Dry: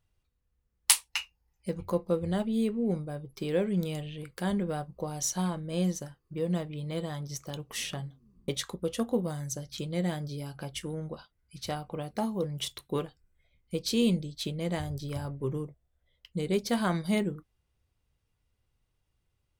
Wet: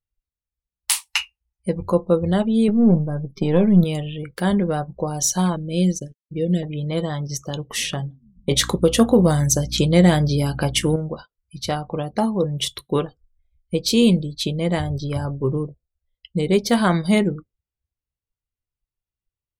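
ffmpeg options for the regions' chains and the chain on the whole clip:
-filter_complex "[0:a]asettb=1/sr,asplit=3[s0][s1][s2];[s0]atrim=end=2.684[s3];[s1]atrim=start=2.68:end=3.84,asetpts=PTS-STARTPTS,afade=t=in:d=0.004:c=qsin,afade=t=out:st=1.156:d=0.004:c=qsin,aeval=exprs='if(lt(val(0),0),0.447*val(0),val(0))':c=same,equalizer=f=190:t=o:w=0.9:g=9.5,asplit=2[s4][s5];[s5]adelay=13,volume=0.2[s6];[s4][s6]amix=inputs=2:normalize=0,atrim=end_sample=51156[s7];[s2]atrim=start=3.836[s8];[s3][s7]acrossfade=d=0.004:c1=hsin:c2=qsin[s9];[s9][s8]acrossfade=d=0.004:c1=qsin:c2=hsin,asettb=1/sr,asplit=3[s10][s11][s12];[s10]atrim=end=5.564[s13];[s11]atrim=start=5.56:end=6.63,asetpts=PTS-STARTPTS,afade=t=in:d=0.004:c=qsin,afade=t=out:st=1.066:d=0.004:c=qsin,aeval=exprs='sgn(val(0))*max(abs(val(0))-0.00251,0)':c=same,asuperstop=centerf=1000:order=4:qfactor=0.7[s14];[s12]atrim=start=6.626[s15];[s13][s14]acrossfade=d=0.004:c1=hsin:c2=qsin[s16];[s16][s15]acrossfade=d=0.004:c1=qsin:c2=hsin,asettb=1/sr,asplit=3[s17][s18][s19];[s17]atrim=end=8.514[s20];[s18]atrim=start=8.51:end=10.96,asetpts=PTS-STARTPTS,afade=t=in:d=0.004:c=qsin,afade=t=out:st=2.446:d=0.004:c=qsin,acontrast=80,aeval=exprs='val(0)+0.00708*(sin(2*PI*60*n/s)+sin(2*PI*2*60*n/s)/2+sin(2*PI*3*60*n/s)/3+sin(2*PI*4*60*n/s)/4+sin(2*PI*5*60*n/s)/5)':c=same[s21];[s19]atrim=start=10.956[s22];[s20][s21]acrossfade=d=0.004:c1=hsin:c2=qsin[s23];[s23][s22]acrossfade=d=0.004:c1=qsin:c2=hsin,afftdn=nr=27:nf=-51,alimiter=level_in=5.31:limit=0.891:release=50:level=0:latency=1,volume=0.631"

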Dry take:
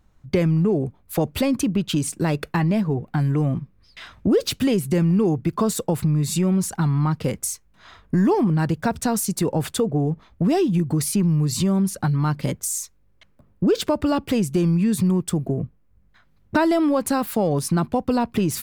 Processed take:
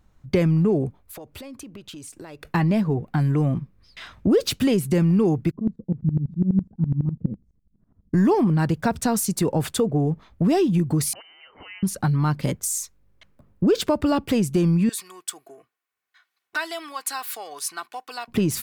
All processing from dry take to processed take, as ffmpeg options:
-filter_complex "[0:a]asettb=1/sr,asplit=3[s0][s1][s2];[s0]atrim=end=0.994[s3];[s1]atrim=start=0.99:end=2.45,asetpts=PTS-STARTPTS,afade=t=in:d=0.004:c=qsin,afade=t=out:st=1.456:d=0.004:c=qsin,equalizer=f=170:w=1.8:g=-12.5,acompressor=threshold=0.0126:ratio=5:attack=3.2:release=140:knee=1:detection=peak[s4];[s2]atrim=start=2.446[s5];[s3][s4]acrossfade=d=0.004:c1=hsin:c2=qsin[s6];[s6][s5]acrossfade=d=0.004:c1=qsin:c2=hsin,asettb=1/sr,asplit=3[s7][s8][s9];[s7]atrim=end=5.514[s10];[s8]atrim=start=5.51:end=8.14,asetpts=PTS-STARTPTS,afade=t=in:d=0.004:c=qsin,afade=t=out:st=2.626:d=0.004:c=qsin,lowpass=f=220:t=q:w=2,aeval=exprs='val(0)*pow(10,-19*if(lt(mod(-12*n/s,1),2*abs(-12)/1000),1-mod(-12*n/s,1)/(2*abs(-12)/1000),(mod(-12*n/s,1)-2*abs(-12)/1000)/(1-2*abs(-12)/1000))/20)':c=same[s11];[s9]atrim=start=8.136[s12];[s10][s11]acrossfade=d=0.004:c1=hsin:c2=qsin[s13];[s13][s12]acrossfade=d=0.004:c1=qsin:c2=hsin,asettb=1/sr,asplit=3[s14][s15][s16];[s14]atrim=end=11.134[s17];[s15]atrim=start=11.13:end=11.83,asetpts=PTS-STARTPTS,afade=t=in:d=0.004:c=qsin,afade=t=out:st=0.696:d=0.004:c=qsin,highpass=1300,lowpass=f=2700:t=q:w=0.5098,lowpass=f=2700:t=q:w=0.6013,lowpass=f=2700:t=q:w=0.9,lowpass=f=2700:t=q:w=2.563,afreqshift=-3200[s18];[s16]atrim=start=11.826[s19];[s17][s18]acrossfade=d=0.004:c1=hsin:c2=qsin[s20];[s20][s19]acrossfade=d=0.004:c1=qsin:c2=hsin,asettb=1/sr,asplit=3[s21][s22][s23];[s21]atrim=end=14.894[s24];[s22]atrim=start=14.89:end=18.28,asetpts=PTS-STARTPTS,afade=t=in:d=0.004:c=qsin,afade=t=out:st=3.386:d=0.004:c=qsin,highpass=1400,aecho=1:1:2.7:0.51,atrim=end_sample=149499[s25];[s23]atrim=start=18.276[s26];[s24][s25]acrossfade=d=0.004:c1=hsin:c2=qsin[s27];[s27][s26]acrossfade=d=0.004:c1=qsin:c2=hsin"

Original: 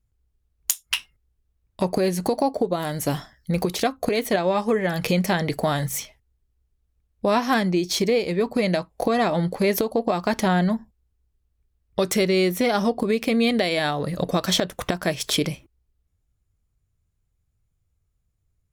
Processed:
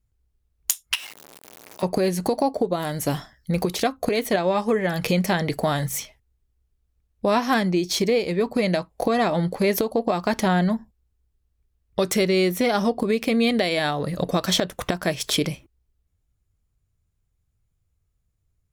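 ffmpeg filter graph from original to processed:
-filter_complex "[0:a]asettb=1/sr,asplit=3[s0][s1][s2];[s0]atrim=end=0.954[s3];[s1]atrim=start=0.95:end=1.83,asetpts=PTS-STARTPTS,afade=t=in:d=0.004:c=qsin,afade=t=out:st=0.876:d=0.004:c=qsin,aeval=exprs='val(0)+0.5*0.0335*sgn(val(0))':c=same,highpass=470,acompressor=threshold=0.02:ratio=3:attack=3.2:release=140:knee=1:detection=peak[s4];[s2]atrim=start=1.826[s5];[s3][s4]acrossfade=d=0.004:c1=hsin:c2=qsin[s6];[s6][s5]acrossfade=d=0.004:c1=qsin:c2=hsin"

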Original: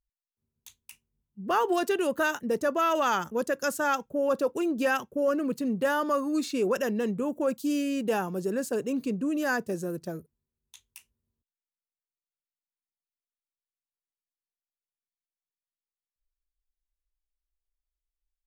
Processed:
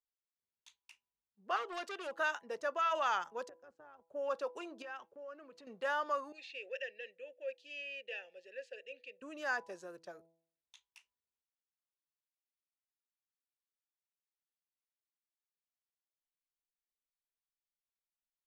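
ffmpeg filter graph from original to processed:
-filter_complex "[0:a]asettb=1/sr,asplit=3[s0][s1][s2];[s0]atrim=end=1.564[s3];[s1]atrim=start=1.56:end=2.13,asetpts=PTS-STARTPTS,afade=t=in:d=0.004:c=qsin,afade=t=out:st=0.566:d=0.004:c=qsin,asuperstop=centerf=860:order=4:qfactor=2.4,volume=21.1,asoftclip=hard,volume=0.0473[s4];[s2]atrim=start=2.126[s5];[s3][s4]acrossfade=d=0.004:c1=hsin:c2=qsin[s6];[s6][s5]acrossfade=d=0.004:c1=qsin:c2=hsin,asettb=1/sr,asplit=3[s7][s8][s9];[s7]atrim=end=3.494[s10];[s8]atrim=start=3.49:end=4.08,asetpts=PTS-STARTPTS,afade=t=in:d=0.004:c=qsin,afade=t=out:st=0.586:d=0.004:c=qsin,acompressor=threshold=0.0398:ratio=2.5:attack=3.2:release=140:knee=1:detection=peak,tremolo=f=170:d=0.621,bandpass=f=130:t=q:w=0.89[s11];[s9]atrim=start=4.076[s12];[s10][s11]acrossfade=d=0.004:c1=hsin:c2=qsin[s13];[s13][s12]acrossfade=d=0.004:c1=qsin:c2=hsin,asettb=1/sr,asplit=3[s14][s15][s16];[s14]atrim=end=4.824[s17];[s15]atrim=start=4.82:end=5.67,asetpts=PTS-STARTPTS,afade=t=in:d=0.004:c=qsin,afade=t=out:st=0.846:d=0.004:c=qsin,lowpass=f=3100:p=1,acompressor=threshold=0.0158:ratio=4:attack=3.2:release=140:knee=1:detection=peak[s18];[s16]atrim=start=5.666[s19];[s17][s18]acrossfade=d=0.004:c1=hsin:c2=qsin[s20];[s20][s19]acrossfade=d=0.004:c1=qsin:c2=hsin,asettb=1/sr,asplit=3[s21][s22][s23];[s21]atrim=end=6.324[s24];[s22]atrim=start=6.32:end=9.22,asetpts=PTS-STARTPTS,afade=t=in:d=0.004:c=qsin,afade=t=out:st=2.896:d=0.004:c=qsin,asplit=3[s25][s26][s27];[s25]bandpass=f=530:t=q:w=8,volume=1[s28];[s26]bandpass=f=1840:t=q:w=8,volume=0.501[s29];[s27]bandpass=f=2480:t=q:w=8,volume=0.355[s30];[s28][s29][s30]amix=inputs=3:normalize=0,highshelf=f=1700:t=q:w=1.5:g=12[s31];[s23]atrim=start=9.216[s32];[s24][s31]acrossfade=d=0.004:c1=hsin:c2=qsin[s33];[s33][s32]acrossfade=d=0.004:c1=qsin:c2=hsin,lowpass=11000,acrossover=split=540 5800:gain=0.0708 1 0.141[s34][s35][s36];[s34][s35][s36]amix=inputs=3:normalize=0,bandreject=f=165:t=h:w=4,bandreject=f=330:t=h:w=4,bandreject=f=495:t=h:w=4,bandreject=f=660:t=h:w=4,bandreject=f=825:t=h:w=4,bandreject=f=990:t=h:w=4,volume=0.501"

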